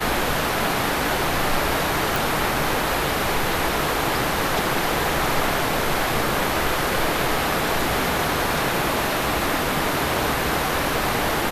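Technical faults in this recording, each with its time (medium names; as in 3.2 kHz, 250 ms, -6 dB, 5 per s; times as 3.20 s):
2.16 s: pop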